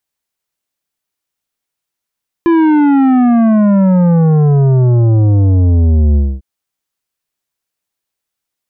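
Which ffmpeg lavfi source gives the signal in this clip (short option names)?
-f lavfi -i "aevalsrc='0.422*clip((3.95-t)/0.25,0,1)*tanh(3.35*sin(2*PI*340*3.95/log(65/340)*(exp(log(65/340)*t/3.95)-1)))/tanh(3.35)':d=3.95:s=44100"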